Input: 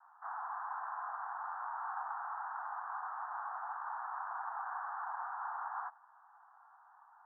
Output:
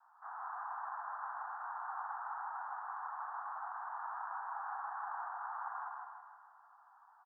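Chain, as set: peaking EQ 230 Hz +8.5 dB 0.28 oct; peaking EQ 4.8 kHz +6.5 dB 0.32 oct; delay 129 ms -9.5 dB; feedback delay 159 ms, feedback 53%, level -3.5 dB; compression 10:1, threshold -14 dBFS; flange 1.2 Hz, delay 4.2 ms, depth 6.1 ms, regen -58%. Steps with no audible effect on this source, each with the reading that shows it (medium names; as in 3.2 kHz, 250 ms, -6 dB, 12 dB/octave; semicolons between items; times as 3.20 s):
peaking EQ 230 Hz: input has nothing below 600 Hz; peaking EQ 4.8 kHz: input has nothing above 1.9 kHz; compression, threshold -14 dBFS: peak at its input -25.0 dBFS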